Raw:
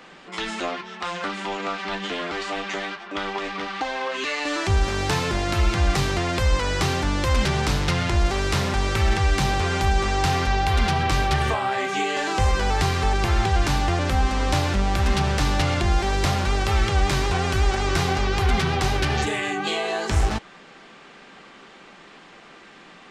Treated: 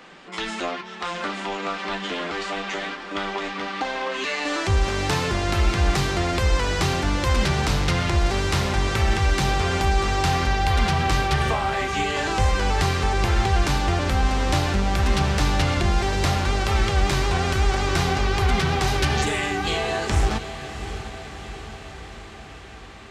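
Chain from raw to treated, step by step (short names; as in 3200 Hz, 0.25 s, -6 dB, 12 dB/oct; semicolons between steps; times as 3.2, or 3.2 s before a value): 18.87–19.46 high shelf 5300 Hz +5.5 dB; diffused feedback echo 0.701 s, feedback 64%, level -12 dB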